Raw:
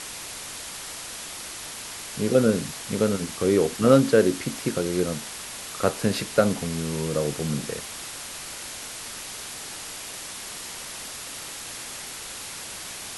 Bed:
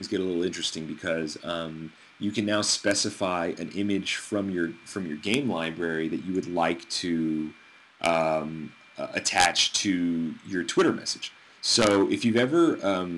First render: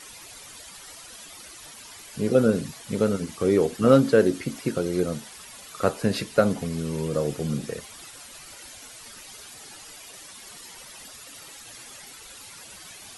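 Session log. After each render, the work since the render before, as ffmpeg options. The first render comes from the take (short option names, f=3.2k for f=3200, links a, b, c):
-af "afftdn=nr=12:nf=-37"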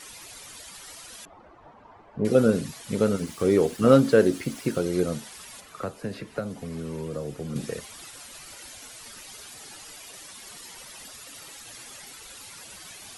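-filter_complex "[0:a]asettb=1/sr,asplit=3[a][b][c];[a]atrim=end=1.254[d];[b]atrim=start=1.25:end=2.25,asetpts=PTS-STARTPTS,afade=t=in:d=0.004:c=qsin,afade=t=out:st=0.996:d=0.004:c=qsin,lowpass=f=880:t=q:w=1.7[e];[c]atrim=start=2.246[f];[d][e]acrossfade=d=0.004:c1=hsin:c2=qsin[g];[g][f]acrossfade=d=0.004:c1=qsin:c2=hsin,asettb=1/sr,asplit=3[h][i][j];[h]atrim=end=3.184[k];[i]atrim=start=3.18:end=4.81,asetpts=PTS-STARTPTS,afade=t=in:d=0.004:c=qsin,afade=t=out:st=1.626:d=0.004:c=qsin,aeval=exprs='val(0)*gte(abs(val(0)),0.00631)':c=same[l];[j]atrim=start=4.806[m];[k][l]acrossfade=d=0.004:c1=hsin:c2=qsin[n];[n][m]acrossfade=d=0.004:c1=qsin:c2=hsin,asettb=1/sr,asplit=3[o][p][q];[o]atrim=end=5.604[r];[p]atrim=start=5.6:end=7.56,asetpts=PTS-STARTPTS,afade=t=in:d=0.004:c=qsin,afade=t=out:st=1.956:d=0.004:c=qsin,acrossover=split=99|250|2300[s][t][u][v];[s]acompressor=threshold=-45dB:ratio=3[w];[t]acompressor=threshold=-41dB:ratio=3[x];[u]acompressor=threshold=-34dB:ratio=3[y];[v]acompressor=threshold=-55dB:ratio=3[z];[w][x][y][z]amix=inputs=4:normalize=0[aa];[q]atrim=start=7.556[ab];[r][aa]acrossfade=d=0.004:c1=hsin:c2=qsin[ac];[ac][ab]acrossfade=d=0.004:c1=qsin:c2=hsin"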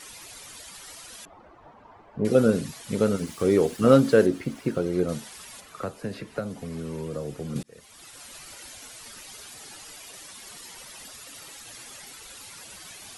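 -filter_complex "[0:a]asettb=1/sr,asplit=3[a][b][c];[a]atrim=end=4.264[d];[b]atrim=start=4.26:end=5.09,asetpts=PTS-STARTPTS,afade=t=in:d=0.004:c=qsin,afade=t=out:st=0.826:d=0.004:c=qsin,highshelf=f=3.3k:g=-10.5[e];[c]atrim=start=5.086[f];[d][e]acrossfade=d=0.004:c1=hsin:c2=qsin[g];[g][f]acrossfade=d=0.004:c1=qsin:c2=hsin,asplit=2[h][i];[h]atrim=end=7.63,asetpts=PTS-STARTPTS,afade=t=out:st=7.626:d=0.004:c=hsin[j];[i]atrim=start=7.63,asetpts=PTS-STARTPTS,afade=t=in:d=0.66[k];[j][k]concat=n=2:v=0:a=1"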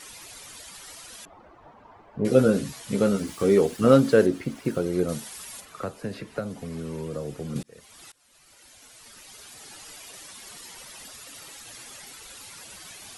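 -filter_complex "[0:a]asettb=1/sr,asplit=3[a][b][c];[a]atrim=end=2.244[d];[b]atrim=start=2.24:end=3.61,asetpts=PTS-STARTPTS,afade=t=in:d=0.004:c=qsin,afade=t=out:st=1.366:d=0.004:c=qsin,asplit=2[e][f];[f]adelay=15,volume=-6dB[g];[e][g]amix=inputs=2:normalize=0,atrim=end_sample=60417[h];[c]atrim=start=3.606[i];[d][h]acrossfade=d=0.004:c1=hsin:c2=qsin[j];[j][i]acrossfade=d=0.004:c1=qsin:c2=hsin,asettb=1/sr,asplit=3[k][l][m];[k]atrim=end=4.654[n];[l]atrim=start=4.65:end=5.65,asetpts=PTS-STARTPTS,afade=t=in:d=0.004:c=qsin,afade=t=out:st=0.996:d=0.004:c=qsin,highshelf=f=8.8k:g=9[o];[m]atrim=start=5.646[p];[n][o]acrossfade=d=0.004:c1=hsin:c2=qsin[q];[q][p]acrossfade=d=0.004:c1=qsin:c2=hsin,asplit=2[r][s];[r]atrim=end=8.12,asetpts=PTS-STARTPTS,afade=t=out:st=8.116:d=0.004:c=hsin:silence=0.0630957[t];[s]atrim=start=8.12,asetpts=PTS-STARTPTS,afade=t=in:d=1.79:silence=0.0630957[u];[t][u]concat=n=2:v=0:a=1"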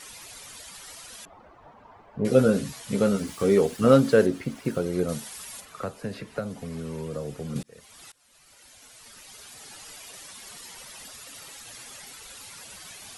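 -af "equalizer=f=330:t=o:w=0.32:g=-4.5"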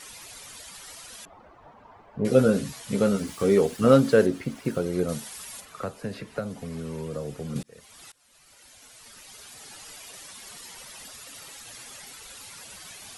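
-af anull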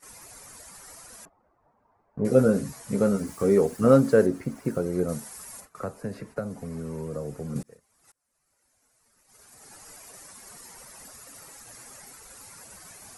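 -af "agate=range=-15dB:threshold=-45dB:ratio=16:detection=peak,equalizer=f=3.3k:t=o:w=1:g=-14.5"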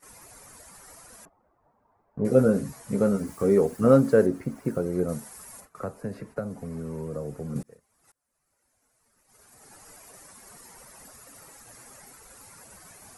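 -af "equalizer=f=5.1k:w=0.45:g=-4.5"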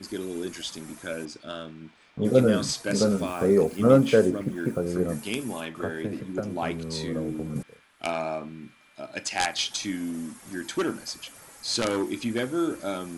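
-filter_complex "[1:a]volume=-5.5dB[a];[0:a][a]amix=inputs=2:normalize=0"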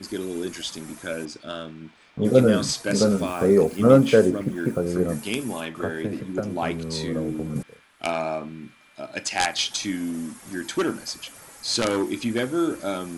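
-af "volume=3dB"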